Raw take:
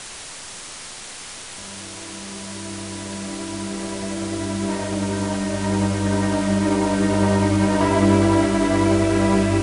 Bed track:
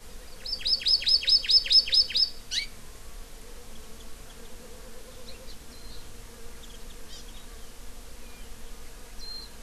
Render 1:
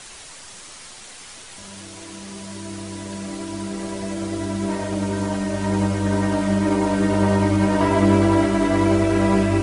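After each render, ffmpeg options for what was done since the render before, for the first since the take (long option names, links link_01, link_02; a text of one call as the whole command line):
ffmpeg -i in.wav -af "afftdn=noise_reduction=6:noise_floor=-36" out.wav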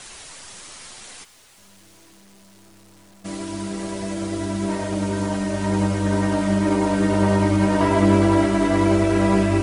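ffmpeg -i in.wav -filter_complex "[0:a]asplit=3[link_01][link_02][link_03];[link_01]afade=type=out:start_time=1.23:duration=0.02[link_04];[link_02]aeval=exprs='(tanh(316*val(0)+0.6)-tanh(0.6))/316':channel_layout=same,afade=type=in:start_time=1.23:duration=0.02,afade=type=out:start_time=3.24:duration=0.02[link_05];[link_03]afade=type=in:start_time=3.24:duration=0.02[link_06];[link_04][link_05][link_06]amix=inputs=3:normalize=0" out.wav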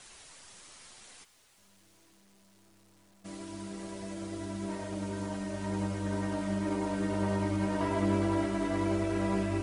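ffmpeg -i in.wav -af "volume=-12.5dB" out.wav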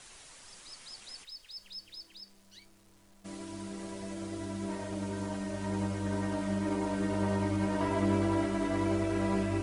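ffmpeg -i in.wav -i bed.wav -filter_complex "[1:a]volume=-26dB[link_01];[0:a][link_01]amix=inputs=2:normalize=0" out.wav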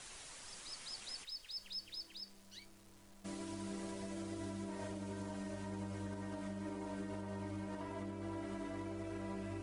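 ffmpeg -i in.wav -af "acompressor=threshold=-37dB:ratio=6,alimiter=level_in=11dB:limit=-24dB:level=0:latency=1:release=305,volume=-11dB" out.wav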